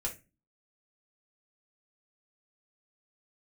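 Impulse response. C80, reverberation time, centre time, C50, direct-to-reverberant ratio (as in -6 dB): 21.0 dB, 0.25 s, 15 ms, 13.0 dB, -2.5 dB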